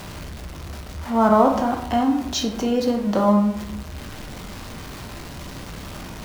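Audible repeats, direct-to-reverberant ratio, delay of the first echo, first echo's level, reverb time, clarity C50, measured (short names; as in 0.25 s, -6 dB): none, 2.0 dB, none, none, 0.75 s, 7.5 dB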